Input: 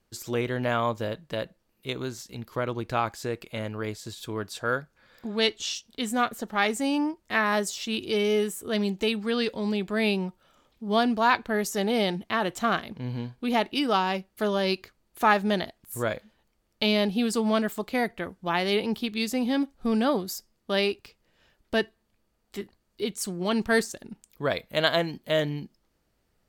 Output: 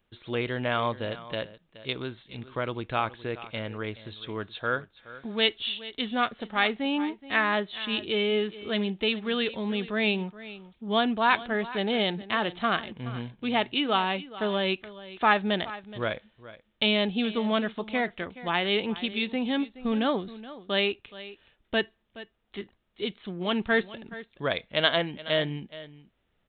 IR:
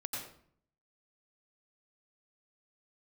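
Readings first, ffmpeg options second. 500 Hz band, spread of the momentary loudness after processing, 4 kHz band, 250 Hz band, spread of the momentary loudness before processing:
-2.0 dB, 16 LU, +2.0 dB, -2.5 dB, 12 LU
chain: -af "aecho=1:1:423:0.15,aresample=8000,aresample=44100,crystalizer=i=3.5:c=0,volume=-2.5dB"

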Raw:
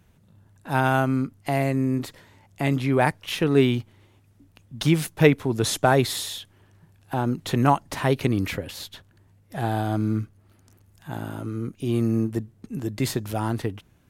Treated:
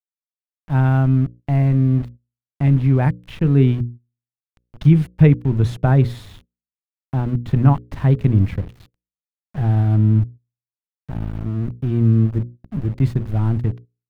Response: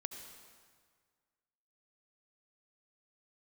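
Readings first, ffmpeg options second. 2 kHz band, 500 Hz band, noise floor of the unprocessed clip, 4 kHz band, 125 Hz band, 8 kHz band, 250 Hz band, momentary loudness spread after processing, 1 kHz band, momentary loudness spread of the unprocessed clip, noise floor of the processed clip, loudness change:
-6.0 dB, -3.0 dB, -59 dBFS, under -10 dB, +11.0 dB, under -15 dB, +4.5 dB, 12 LU, -4.5 dB, 13 LU, under -85 dBFS, +6.0 dB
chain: -af "aeval=exprs='val(0)*gte(abs(val(0)),0.0282)':c=same,bandreject=f=60:t=h:w=6,bandreject=f=120:t=h:w=6,bandreject=f=180:t=h:w=6,bandreject=f=240:t=h:w=6,bandreject=f=300:t=h:w=6,bandreject=f=360:t=h:w=6,bandreject=f=420:t=h:w=6,bandreject=f=480:t=h:w=6,bandreject=f=540:t=h:w=6,agate=range=-12dB:threshold=-43dB:ratio=16:detection=peak,lowshelf=f=140:g=8.5,acompressor=mode=upward:threshold=-40dB:ratio=2.5,bass=f=250:g=14,treble=f=4k:g=-15,volume=-5dB"

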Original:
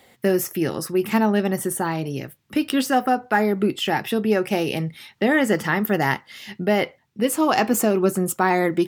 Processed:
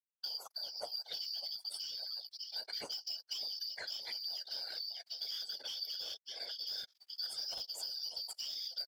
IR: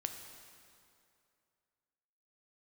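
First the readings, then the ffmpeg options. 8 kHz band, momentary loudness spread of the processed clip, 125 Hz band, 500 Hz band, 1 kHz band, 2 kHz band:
-19.0 dB, 3 LU, under -40 dB, -35.0 dB, -34.5 dB, -29.0 dB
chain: -filter_complex "[0:a]afftfilt=real='real(if(lt(b,272),68*(eq(floor(b/68),0)*3+eq(floor(b/68),1)*2+eq(floor(b/68),2)*1+eq(floor(b/68),3)*0)+mod(b,68),b),0)':imag='imag(if(lt(b,272),68*(eq(floor(b/68),0)*3+eq(floor(b/68),1)*2+eq(floor(b/68),2)*1+eq(floor(b/68),3)*0)+mod(b,68),b),0)':win_size=2048:overlap=0.75,highshelf=f=9.5k:g=-12,aecho=1:1:1.4:0.3,acrossover=split=480|3000[a][b][c];[b]acompressor=threshold=-32dB:ratio=6[d];[a][d][c]amix=inputs=3:normalize=0,firequalizer=gain_entry='entry(160,0);entry(470,10);entry(1200,-3)':delay=0.05:min_phase=1,aecho=1:1:595|1190|1785|2380|2975|3570:0.282|0.161|0.0916|0.0522|0.0298|0.017,asplit=2[e][f];[f]alimiter=limit=-20.5dB:level=0:latency=1:release=180,volume=0.5dB[g];[e][g]amix=inputs=2:normalize=0,aeval=exprs='val(0)*gte(abs(val(0)),0.0447)':c=same,afftdn=nr=25:nf=-34,asplit=2[h][i];[i]highpass=f=720:p=1,volume=14dB,asoftclip=type=tanh:threshold=-8.5dB[j];[h][j]amix=inputs=2:normalize=0,lowpass=f=7.9k:p=1,volume=-6dB,acompressor=threshold=-28dB:ratio=6,afftfilt=real='hypot(re,im)*cos(2*PI*random(0))':imag='hypot(re,im)*sin(2*PI*random(1))':win_size=512:overlap=0.75,volume=-6.5dB"

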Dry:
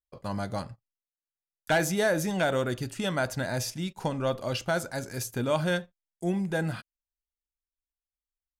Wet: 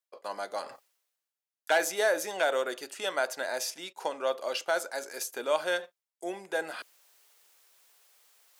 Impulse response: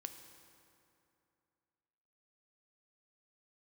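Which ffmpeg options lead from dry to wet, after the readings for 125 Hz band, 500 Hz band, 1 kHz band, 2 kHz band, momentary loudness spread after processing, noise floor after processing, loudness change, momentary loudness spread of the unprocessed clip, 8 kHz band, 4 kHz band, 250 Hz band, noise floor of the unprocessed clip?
under -30 dB, -0.5 dB, 0.0 dB, 0.0 dB, 13 LU, under -85 dBFS, -2.0 dB, 9 LU, 0.0 dB, 0.0 dB, -14.0 dB, under -85 dBFS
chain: -af "highpass=f=410:w=0.5412,highpass=f=410:w=1.3066,areverse,acompressor=mode=upward:threshold=-37dB:ratio=2.5,areverse"

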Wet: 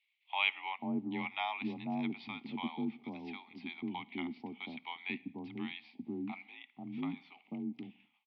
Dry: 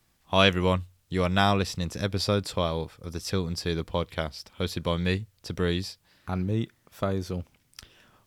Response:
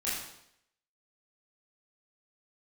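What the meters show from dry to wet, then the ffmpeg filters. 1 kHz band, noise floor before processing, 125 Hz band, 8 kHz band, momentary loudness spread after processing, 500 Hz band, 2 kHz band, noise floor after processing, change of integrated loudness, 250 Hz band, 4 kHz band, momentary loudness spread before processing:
-10.5 dB, -68 dBFS, -22.0 dB, under -40 dB, 10 LU, -21.0 dB, -7.0 dB, -76 dBFS, -11.5 dB, -7.5 dB, -13.0 dB, 13 LU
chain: -filter_complex "[0:a]agate=range=-33dB:threshold=-51dB:ratio=3:detection=peak,acrossover=split=2300[a][b];[b]acompressor=mode=upward:threshold=-37dB:ratio=2.5[c];[a][c]amix=inputs=2:normalize=0,asplit=3[d][e][f];[d]bandpass=f=300:t=q:w=8,volume=0dB[g];[e]bandpass=f=870:t=q:w=8,volume=-6dB[h];[f]bandpass=f=2.24k:t=q:w=8,volume=-9dB[i];[g][h][i]amix=inputs=3:normalize=0,asplit=2[j][k];[1:a]atrim=start_sample=2205,afade=t=out:st=0.27:d=0.01,atrim=end_sample=12348,adelay=29[l];[k][l]afir=irnorm=-1:irlink=0,volume=-27.5dB[m];[j][m]amix=inputs=2:normalize=0,highpass=f=260:t=q:w=0.5412,highpass=f=260:t=q:w=1.307,lowpass=f=3.5k:t=q:w=0.5176,lowpass=f=3.5k:t=q:w=0.7071,lowpass=f=3.5k:t=q:w=1.932,afreqshift=-63,crystalizer=i=4.5:c=0,acrossover=split=660[n][o];[n]adelay=490[p];[p][o]amix=inputs=2:normalize=0,volume=3.5dB"

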